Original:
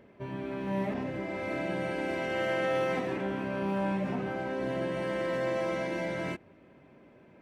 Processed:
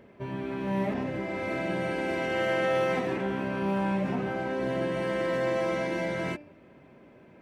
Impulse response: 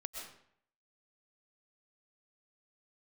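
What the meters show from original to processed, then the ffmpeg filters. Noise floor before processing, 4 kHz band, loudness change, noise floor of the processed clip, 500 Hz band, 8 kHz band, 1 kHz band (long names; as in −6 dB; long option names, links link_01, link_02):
−58 dBFS, +3.0 dB, +3.0 dB, −55 dBFS, +2.5 dB, can't be measured, +3.0 dB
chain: -af "bandreject=frequency=294.8:width_type=h:width=4,bandreject=frequency=589.6:width_type=h:width=4,bandreject=frequency=884.4:width_type=h:width=4,bandreject=frequency=1179.2:width_type=h:width=4,bandreject=frequency=1474:width_type=h:width=4,bandreject=frequency=1768.8:width_type=h:width=4,bandreject=frequency=2063.6:width_type=h:width=4,bandreject=frequency=2358.4:width_type=h:width=4,bandreject=frequency=2653.2:width_type=h:width=4,bandreject=frequency=2948:width_type=h:width=4,bandreject=frequency=3242.8:width_type=h:width=4,bandreject=frequency=3537.6:width_type=h:width=4,bandreject=frequency=3832.4:width_type=h:width=4,bandreject=frequency=4127.2:width_type=h:width=4,bandreject=frequency=4422:width_type=h:width=4,bandreject=frequency=4716.8:width_type=h:width=4,bandreject=frequency=5011.6:width_type=h:width=4,bandreject=frequency=5306.4:width_type=h:width=4,volume=3dB"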